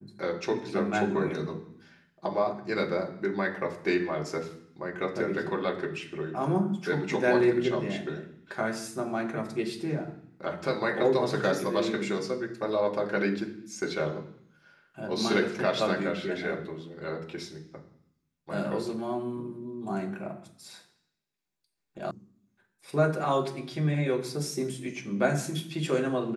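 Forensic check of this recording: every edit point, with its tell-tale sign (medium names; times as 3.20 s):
22.11 s: sound stops dead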